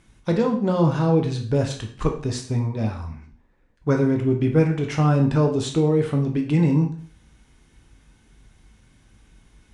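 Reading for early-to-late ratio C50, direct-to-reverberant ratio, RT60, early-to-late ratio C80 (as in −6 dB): 8.5 dB, 2.5 dB, 0.50 s, 13.0 dB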